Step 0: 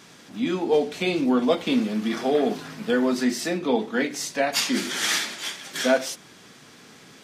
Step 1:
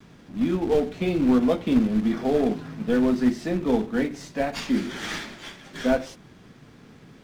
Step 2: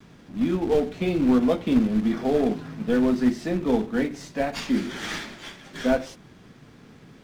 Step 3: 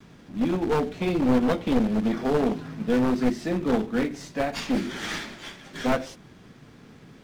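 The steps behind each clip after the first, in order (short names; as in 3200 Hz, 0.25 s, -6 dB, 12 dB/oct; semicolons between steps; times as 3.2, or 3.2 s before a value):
gate with hold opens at -40 dBFS; companded quantiser 4-bit; RIAA curve playback; gain -4.5 dB
nothing audible
one-sided fold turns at -20 dBFS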